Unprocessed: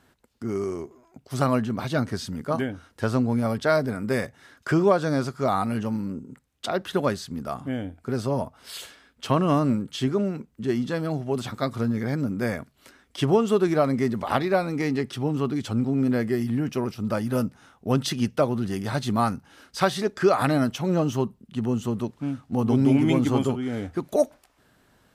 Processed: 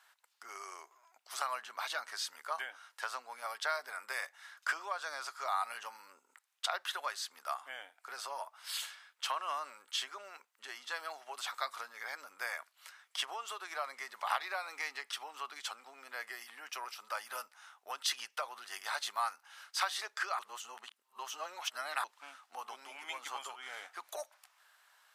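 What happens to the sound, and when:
0:20.39–0:22.04: reverse
whole clip: downward compressor, threshold −24 dBFS; high-pass filter 890 Hz 24 dB per octave; level −1 dB

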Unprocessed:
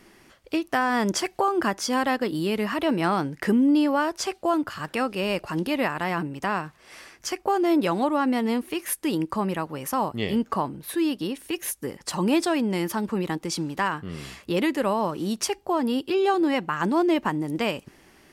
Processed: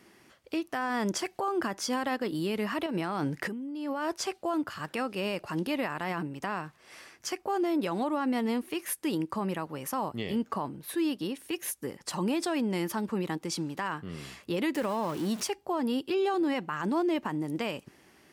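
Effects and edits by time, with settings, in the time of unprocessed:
0:02.86–0:04.14: compressor whose output falls as the input rises −28 dBFS
0:14.75–0:15.47: converter with a step at zero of −32.5 dBFS
whole clip: high-pass filter 80 Hz; brickwall limiter −17 dBFS; level −4.5 dB

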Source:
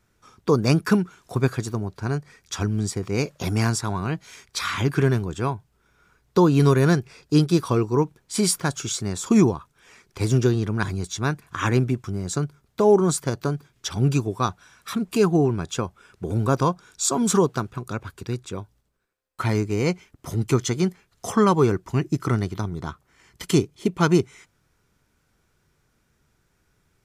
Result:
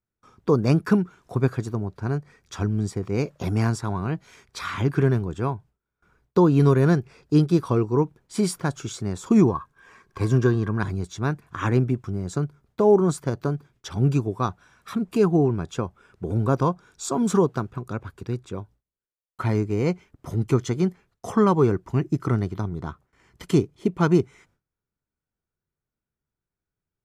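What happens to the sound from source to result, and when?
0:09.48–0:10.79: hollow resonant body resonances 1,100/1,600 Hz, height 17 dB, ringing for 50 ms
whole clip: noise gate with hold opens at −50 dBFS; high-shelf EQ 2,100 Hz −10.5 dB

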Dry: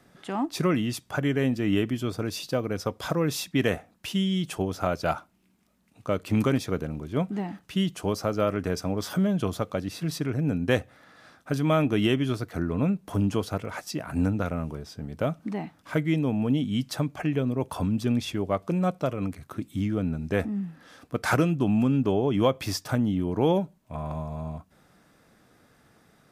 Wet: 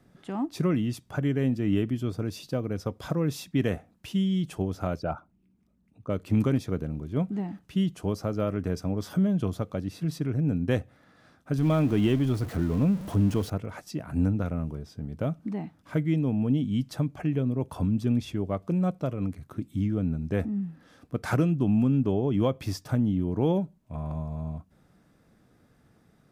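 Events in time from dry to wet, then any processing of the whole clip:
0:04.99–0:06.10: spectral envelope exaggerated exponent 1.5
0:11.58–0:13.50: converter with a step at zero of −31.5 dBFS
whole clip: low-shelf EQ 390 Hz +10.5 dB; level −8 dB

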